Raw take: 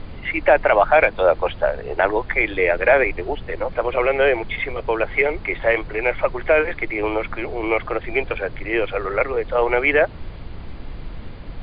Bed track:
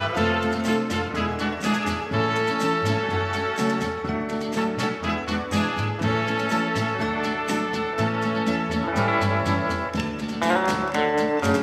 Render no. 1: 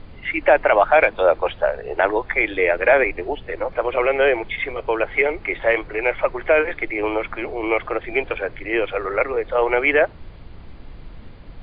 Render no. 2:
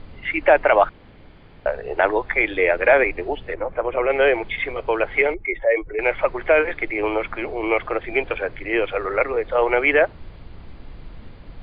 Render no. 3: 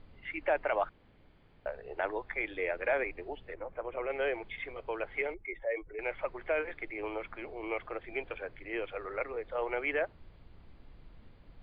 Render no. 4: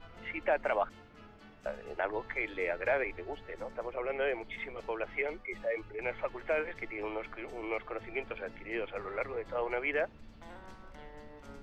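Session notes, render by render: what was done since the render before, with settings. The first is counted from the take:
noise reduction from a noise print 6 dB
0:00.89–0:01.66: fill with room tone; 0:03.54–0:04.10: high-frequency loss of the air 490 metres; 0:05.34–0:05.99: expanding power law on the bin magnitudes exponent 1.8
level −15.5 dB
mix in bed track −30 dB

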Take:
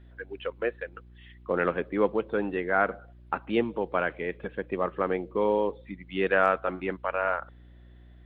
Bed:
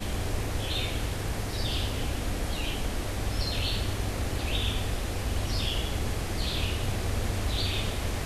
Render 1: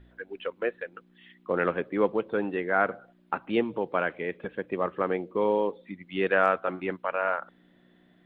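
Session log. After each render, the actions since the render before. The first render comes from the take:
hum removal 60 Hz, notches 2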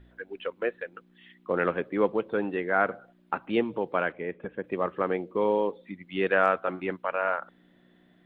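0:04.12–0:04.64: high-frequency loss of the air 430 metres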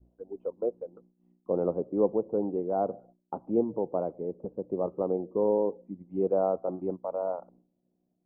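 downward expander −49 dBFS
inverse Chebyshev low-pass filter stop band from 1,600 Hz, stop band 40 dB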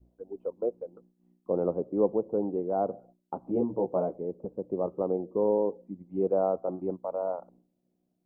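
0:03.41–0:04.17: double-tracking delay 16 ms −2.5 dB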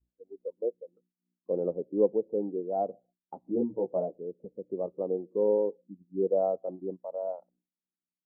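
every bin expanded away from the loudest bin 1.5 to 1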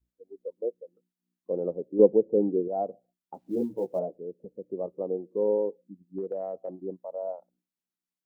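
0:01.99–0:02.68: tilt shelving filter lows +8.5 dB, about 1,300 Hz
0:03.34–0:03.99: log-companded quantiser 8 bits
0:06.18–0:06.82: downward compressor, threshold −29 dBFS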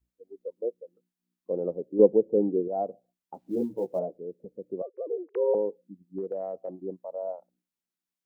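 0:04.82–0:05.55: three sine waves on the formant tracks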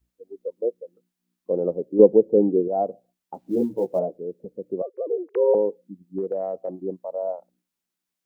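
level +6 dB
brickwall limiter −2 dBFS, peak gain reduction 2 dB

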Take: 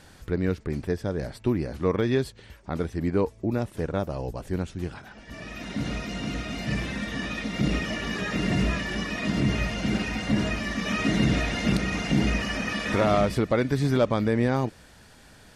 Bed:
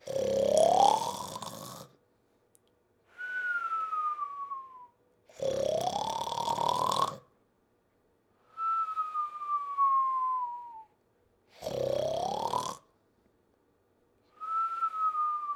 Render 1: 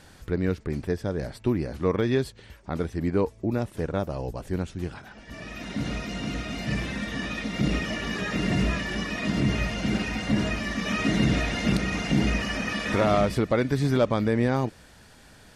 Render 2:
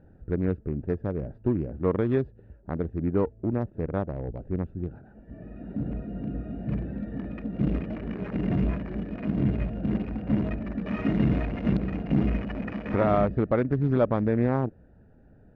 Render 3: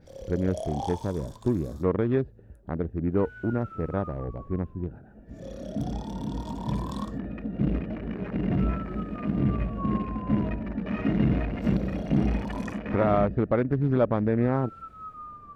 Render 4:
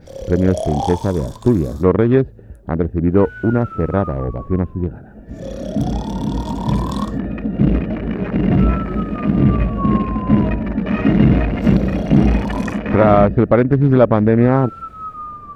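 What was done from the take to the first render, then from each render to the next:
no processing that can be heard
adaptive Wiener filter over 41 samples; low-pass filter 1,700 Hz 12 dB per octave
mix in bed −11.5 dB
level +11.5 dB; brickwall limiter −1 dBFS, peak gain reduction 0.5 dB

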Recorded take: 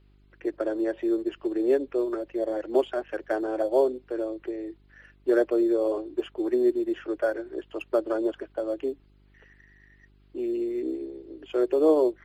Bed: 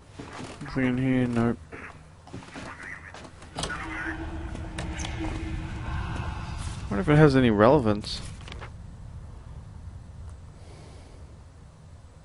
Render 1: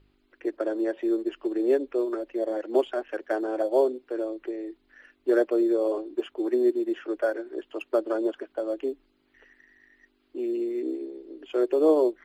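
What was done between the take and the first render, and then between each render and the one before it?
hum removal 50 Hz, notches 4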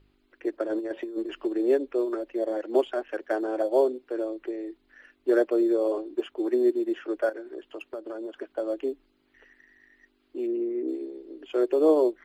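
0:00.66–0:01.46: compressor whose output falls as the input rises −29 dBFS, ratio −0.5
0:07.29–0:08.39: downward compressor 4 to 1, threshold −34 dBFS
0:10.46–0:10.87: low-pass filter 1,900 Hz → 1,400 Hz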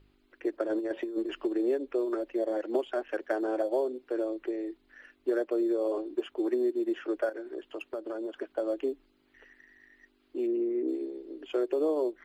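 downward compressor, threshold −25 dBFS, peak gain reduction 9.5 dB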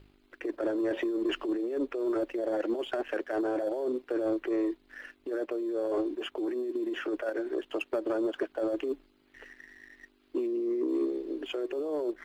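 compressor whose output falls as the input rises −33 dBFS, ratio −1
leveller curve on the samples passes 1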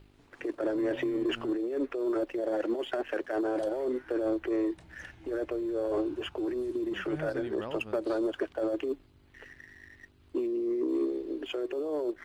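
mix in bed −21.5 dB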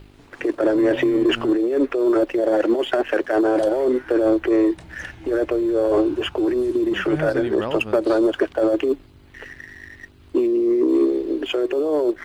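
level +12 dB

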